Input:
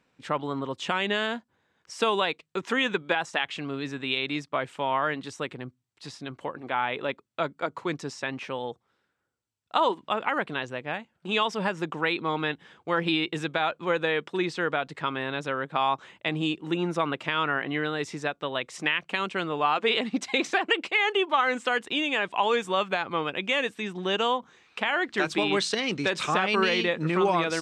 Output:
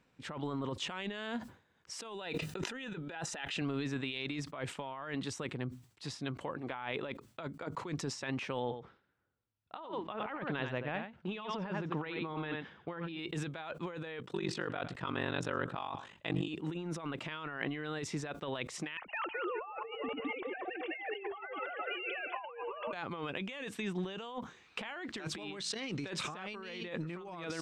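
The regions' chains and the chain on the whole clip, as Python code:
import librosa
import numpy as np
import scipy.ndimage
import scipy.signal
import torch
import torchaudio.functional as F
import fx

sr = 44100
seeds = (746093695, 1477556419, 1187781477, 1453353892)

y = fx.chain(x, sr, fx.notch_comb(f0_hz=1100.0),
    fx.pre_swell(db_per_s=21.0), at=(2.14, 3.62))
y = fx.chain(y, sr, fx.air_absorb(metres=180.0),
    fx.echo_single(ms=89, db=-9.5), at=(8.6, 13.19))
y = fx.chain(y, sr, fx.ring_mod(carrier_hz=24.0),
    fx.notch(hz=2200.0, q=15.0),
    fx.echo_single(ms=110, db=-22.0), at=(14.19, 16.48))
y = fx.chain(y, sr, fx.sine_speech(),
    fx.echo_split(split_hz=830.0, low_ms=111, high_ms=202, feedback_pct=52, wet_db=-10), at=(18.97, 22.93))
y = fx.over_compress(y, sr, threshold_db=-33.0, ratio=-1.0)
y = fx.low_shelf(y, sr, hz=160.0, db=7.5)
y = fx.sustainer(y, sr, db_per_s=140.0)
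y = y * librosa.db_to_amplitude(-8.0)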